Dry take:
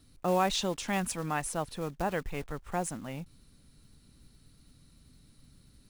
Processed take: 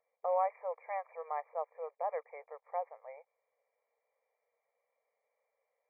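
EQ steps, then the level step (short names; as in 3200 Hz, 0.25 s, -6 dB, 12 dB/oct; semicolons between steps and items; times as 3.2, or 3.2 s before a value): dynamic EQ 1200 Hz, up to +7 dB, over -49 dBFS, Q 3.3; brick-wall FIR band-pass 440–2400 Hz; fixed phaser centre 610 Hz, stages 4; -2.0 dB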